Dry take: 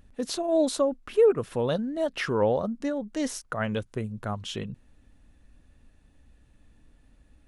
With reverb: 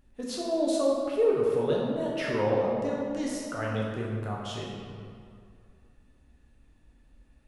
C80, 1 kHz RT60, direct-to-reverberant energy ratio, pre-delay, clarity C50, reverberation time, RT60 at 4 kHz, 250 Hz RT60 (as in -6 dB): 1.5 dB, 2.3 s, -4.0 dB, 10 ms, -0.5 dB, 2.3 s, 1.4 s, 2.3 s